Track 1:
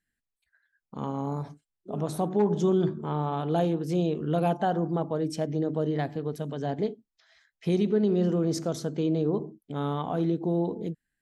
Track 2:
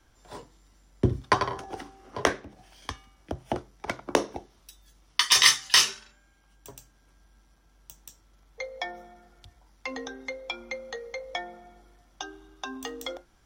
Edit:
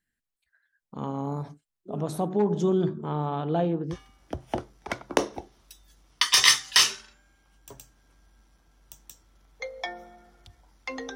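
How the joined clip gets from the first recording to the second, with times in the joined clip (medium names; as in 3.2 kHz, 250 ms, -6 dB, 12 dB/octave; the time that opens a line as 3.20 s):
track 1
3.30–3.96 s: low-pass 7.7 kHz -> 1.2 kHz
3.93 s: go over to track 2 from 2.91 s, crossfade 0.06 s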